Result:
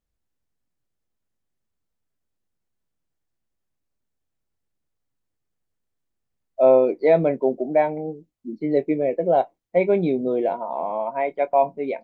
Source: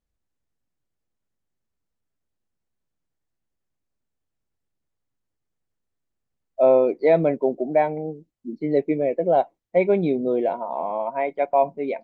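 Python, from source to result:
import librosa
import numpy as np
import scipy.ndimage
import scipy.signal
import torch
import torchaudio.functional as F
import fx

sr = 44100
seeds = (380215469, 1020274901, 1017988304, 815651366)

y = fx.doubler(x, sr, ms=23.0, db=-14.0)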